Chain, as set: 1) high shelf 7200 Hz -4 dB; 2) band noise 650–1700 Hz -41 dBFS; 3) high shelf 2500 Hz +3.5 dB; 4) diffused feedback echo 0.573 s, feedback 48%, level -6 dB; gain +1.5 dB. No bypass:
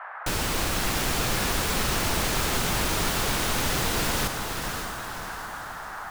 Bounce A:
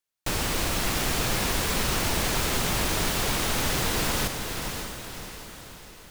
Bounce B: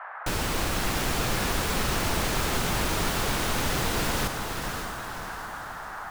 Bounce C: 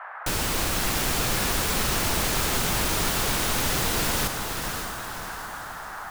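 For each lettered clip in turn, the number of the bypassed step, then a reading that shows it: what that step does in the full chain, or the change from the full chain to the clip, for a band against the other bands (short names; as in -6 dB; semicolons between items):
2, 1 kHz band -2.0 dB; 3, loudness change -1.5 LU; 1, 8 kHz band +2.0 dB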